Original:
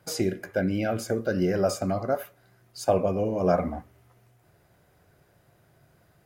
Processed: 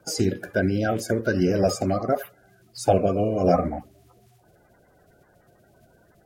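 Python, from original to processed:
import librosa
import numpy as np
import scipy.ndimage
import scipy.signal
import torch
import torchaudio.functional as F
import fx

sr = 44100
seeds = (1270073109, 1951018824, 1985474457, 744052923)

y = fx.spec_quant(x, sr, step_db=30)
y = F.gain(torch.from_numpy(y), 4.0).numpy()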